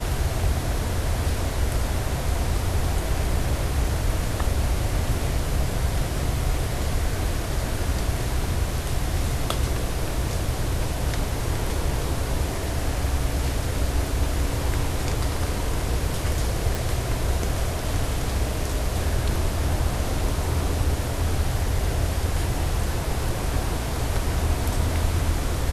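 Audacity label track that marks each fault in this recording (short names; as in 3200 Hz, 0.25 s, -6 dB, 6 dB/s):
16.750000	16.750000	pop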